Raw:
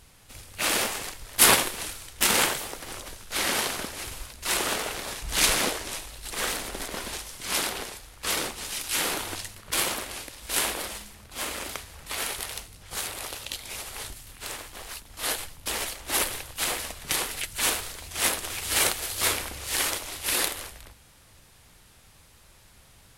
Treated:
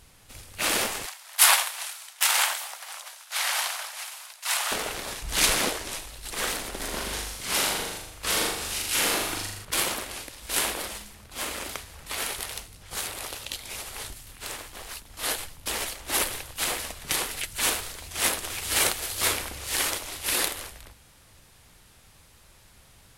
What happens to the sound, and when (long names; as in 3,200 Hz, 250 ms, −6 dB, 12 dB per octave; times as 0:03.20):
0:01.06–0:04.72: Butterworth high-pass 680 Hz
0:06.78–0:09.65: flutter between parallel walls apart 6.9 metres, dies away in 0.74 s